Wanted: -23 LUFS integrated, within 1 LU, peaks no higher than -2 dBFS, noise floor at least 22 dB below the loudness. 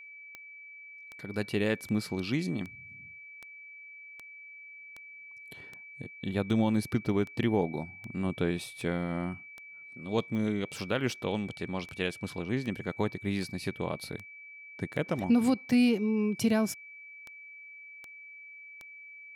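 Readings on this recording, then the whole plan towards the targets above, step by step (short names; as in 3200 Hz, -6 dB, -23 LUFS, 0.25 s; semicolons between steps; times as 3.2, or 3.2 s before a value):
clicks 25; steady tone 2300 Hz; tone level -46 dBFS; loudness -31.5 LUFS; peak -16.0 dBFS; loudness target -23.0 LUFS
-> de-click; notch 2300 Hz, Q 30; gain +8.5 dB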